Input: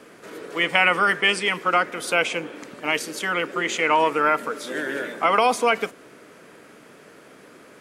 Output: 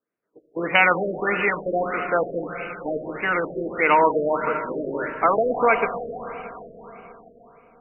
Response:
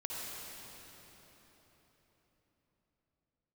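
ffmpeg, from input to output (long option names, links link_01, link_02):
-filter_complex "[0:a]aexciter=amount=10.8:drive=1.1:freq=5800,agate=range=-42dB:threshold=-30dB:ratio=16:detection=peak,asplit=2[link_01][link_02];[link_02]asubboost=boost=9.5:cutoff=87[link_03];[1:a]atrim=start_sample=2205,lowshelf=frequency=100:gain=9.5[link_04];[link_03][link_04]afir=irnorm=-1:irlink=0,volume=-6.5dB[link_05];[link_01][link_05]amix=inputs=2:normalize=0,afftfilt=real='re*lt(b*sr/1024,660*pow(3000/660,0.5+0.5*sin(2*PI*1.6*pts/sr)))':imag='im*lt(b*sr/1024,660*pow(3000/660,0.5+0.5*sin(2*PI*1.6*pts/sr)))':win_size=1024:overlap=0.75"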